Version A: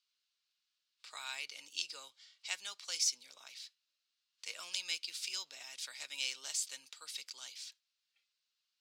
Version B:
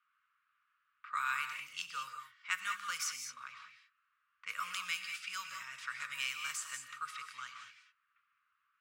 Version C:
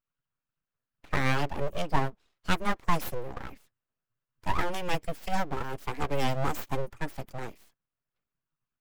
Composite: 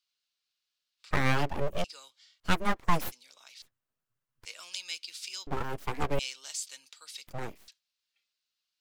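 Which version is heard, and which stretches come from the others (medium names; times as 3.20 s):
A
1.11–1.84 s: from C
2.40–3.12 s: from C
3.62–4.45 s: from C
5.47–6.19 s: from C
7.27–7.68 s: from C
not used: B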